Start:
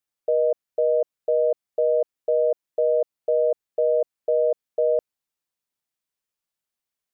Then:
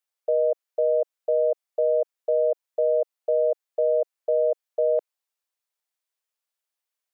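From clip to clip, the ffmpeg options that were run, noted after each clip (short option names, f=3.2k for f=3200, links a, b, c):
-af "highpass=f=450:w=0.5412,highpass=f=450:w=1.3066"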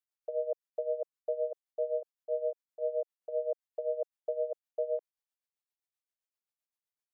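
-af "tremolo=f=7.7:d=0.78,volume=-8dB"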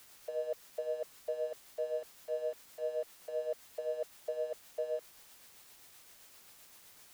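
-af "aeval=exprs='val(0)+0.5*0.00668*sgn(val(0))':c=same,volume=-4.5dB"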